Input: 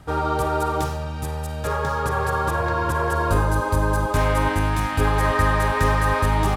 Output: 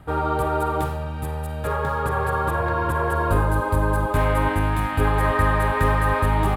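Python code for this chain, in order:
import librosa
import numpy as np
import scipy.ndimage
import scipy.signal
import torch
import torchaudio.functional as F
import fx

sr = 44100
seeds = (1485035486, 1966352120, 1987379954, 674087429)

y = fx.peak_eq(x, sr, hz=5800.0, db=-14.5, octaves=0.89)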